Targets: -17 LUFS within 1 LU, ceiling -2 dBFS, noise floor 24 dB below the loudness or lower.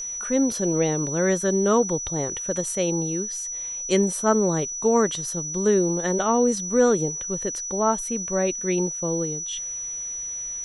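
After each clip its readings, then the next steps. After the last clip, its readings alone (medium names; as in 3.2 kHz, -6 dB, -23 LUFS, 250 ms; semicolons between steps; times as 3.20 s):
steady tone 5.9 kHz; tone level -29 dBFS; loudness -23.5 LUFS; peak level -7.0 dBFS; loudness target -17.0 LUFS
-> band-stop 5.9 kHz, Q 30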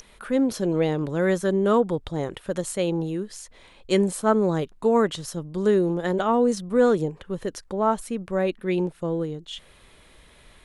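steady tone not found; loudness -24.0 LUFS; peak level -8.0 dBFS; loudness target -17.0 LUFS
-> trim +7 dB; peak limiter -2 dBFS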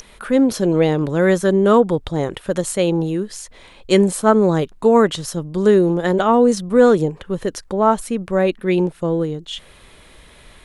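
loudness -17.5 LUFS; peak level -2.0 dBFS; noise floor -47 dBFS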